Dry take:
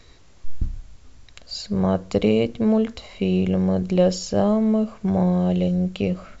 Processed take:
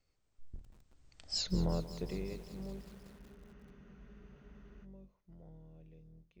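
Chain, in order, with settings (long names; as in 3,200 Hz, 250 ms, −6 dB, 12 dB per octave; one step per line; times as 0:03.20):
sub-octave generator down 2 octaves, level −1 dB
source passing by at 0:01.40, 44 m/s, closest 2.7 metres
frozen spectrum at 0:02.84, 2.01 s
feedback echo at a low word length 185 ms, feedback 80%, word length 8 bits, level −14 dB
level −2 dB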